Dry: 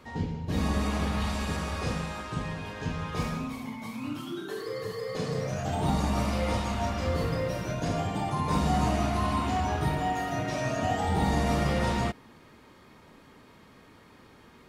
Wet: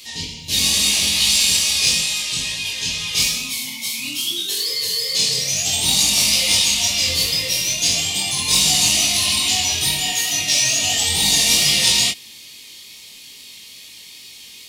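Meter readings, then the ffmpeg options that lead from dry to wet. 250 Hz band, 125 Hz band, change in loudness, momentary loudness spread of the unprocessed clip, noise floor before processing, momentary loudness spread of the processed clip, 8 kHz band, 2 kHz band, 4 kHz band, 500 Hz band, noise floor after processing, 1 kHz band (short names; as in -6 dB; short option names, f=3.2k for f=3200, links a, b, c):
-3.5 dB, -4.5 dB, +14.0 dB, 9 LU, -55 dBFS, 9 LU, +28.5 dB, +13.0 dB, +26.0 dB, -4.0 dB, -41 dBFS, -4.0 dB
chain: -af "aexciter=amount=15.8:drive=9.3:freq=2.4k,aeval=exprs='1.41*(cos(1*acos(clip(val(0)/1.41,-1,1)))-cos(1*PI/2))+0.0316*(cos(7*acos(clip(val(0)/1.41,-1,1)))-cos(7*PI/2))':c=same,flanger=delay=20:depth=3.7:speed=2.3"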